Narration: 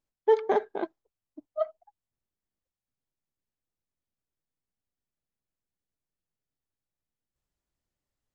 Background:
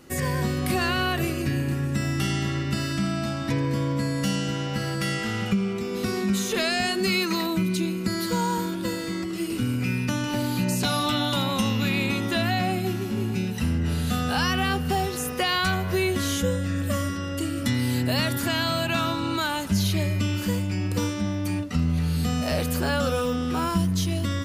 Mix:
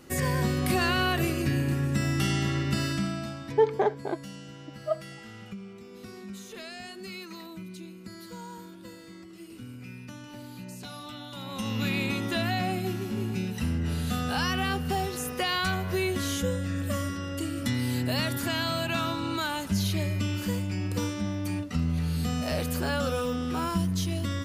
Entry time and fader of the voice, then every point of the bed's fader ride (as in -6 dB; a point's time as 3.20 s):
3.30 s, 0.0 dB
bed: 2.87 s -1 dB
3.82 s -17 dB
11.31 s -17 dB
11.81 s -4 dB